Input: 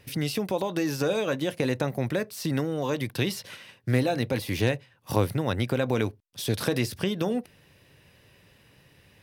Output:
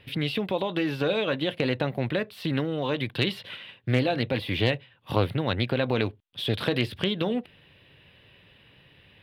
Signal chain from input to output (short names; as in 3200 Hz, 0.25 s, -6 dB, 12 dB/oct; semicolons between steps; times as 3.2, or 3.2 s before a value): resonant high shelf 4600 Hz -11.5 dB, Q 3; hard clip -10.5 dBFS, distortion -36 dB; Doppler distortion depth 0.16 ms